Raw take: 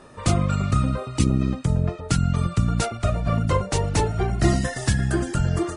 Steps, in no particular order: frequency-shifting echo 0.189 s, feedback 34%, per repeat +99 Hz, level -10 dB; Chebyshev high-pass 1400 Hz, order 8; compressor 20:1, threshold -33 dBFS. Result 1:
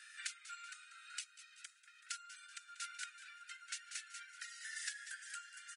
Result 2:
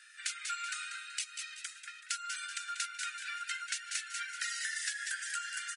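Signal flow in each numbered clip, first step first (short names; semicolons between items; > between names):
frequency-shifting echo > compressor > Chebyshev high-pass; Chebyshev high-pass > frequency-shifting echo > compressor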